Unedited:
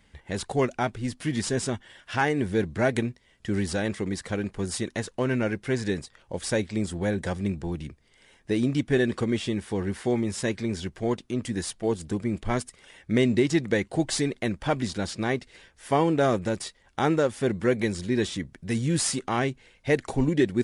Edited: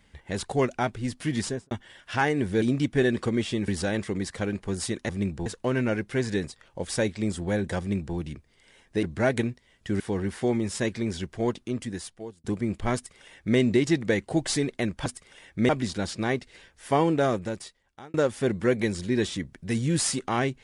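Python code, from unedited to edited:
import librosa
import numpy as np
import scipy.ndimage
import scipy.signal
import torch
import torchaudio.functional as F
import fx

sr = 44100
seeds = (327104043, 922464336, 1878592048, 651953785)

y = fx.studio_fade_out(x, sr, start_s=1.41, length_s=0.3)
y = fx.edit(y, sr, fx.swap(start_s=2.62, length_s=0.97, other_s=8.57, other_length_s=1.06),
    fx.duplicate(start_s=7.33, length_s=0.37, to_s=5.0),
    fx.fade_out_span(start_s=11.24, length_s=0.83),
    fx.duplicate(start_s=12.58, length_s=0.63, to_s=14.69),
    fx.fade_out_span(start_s=16.09, length_s=1.05), tone=tone)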